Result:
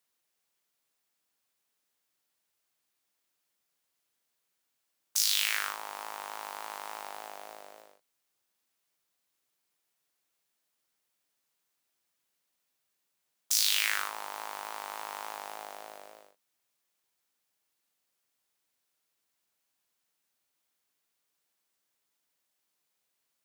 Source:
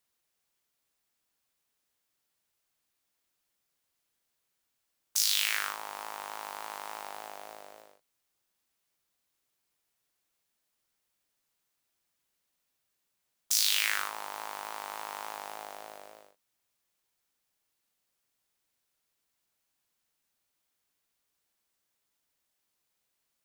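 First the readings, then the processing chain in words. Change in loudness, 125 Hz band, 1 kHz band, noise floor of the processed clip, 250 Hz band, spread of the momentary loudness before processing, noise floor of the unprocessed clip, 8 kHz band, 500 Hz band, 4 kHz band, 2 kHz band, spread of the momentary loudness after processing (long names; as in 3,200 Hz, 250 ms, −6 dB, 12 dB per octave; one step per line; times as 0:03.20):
0.0 dB, can't be measured, 0.0 dB, −81 dBFS, −1.0 dB, 20 LU, −81 dBFS, 0.0 dB, −0.5 dB, 0.0 dB, 0.0 dB, 20 LU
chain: high-pass filter 160 Hz 6 dB per octave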